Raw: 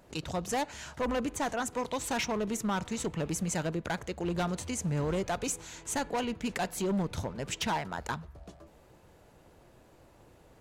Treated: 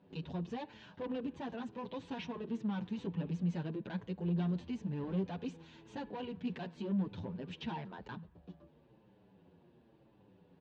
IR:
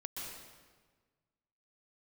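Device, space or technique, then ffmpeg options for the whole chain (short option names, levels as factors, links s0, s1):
barber-pole flanger into a guitar amplifier: -filter_complex "[0:a]asplit=2[s0][s1];[s1]adelay=7.7,afreqshift=-0.96[s2];[s0][s2]amix=inputs=2:normalize=1,asoftclip=type=tanh:threshold=0.0299,highpass=88,equalizer=f=180:t=q:w=4:g=10,equalizer=f=250:t=q:w=4:g=4,equalizer=f=380:t=q:w=4:g=3,equalizer=f=670:t=q:w=4:g=-6,equalizer=f=1300:t=q:w=4:g=-9,equalizer=f=2100:t=q:w=4:g=-8,lowpass=f=3600:w=0.5412,lowpass=f=3600:w=1.3066,volume=0.631"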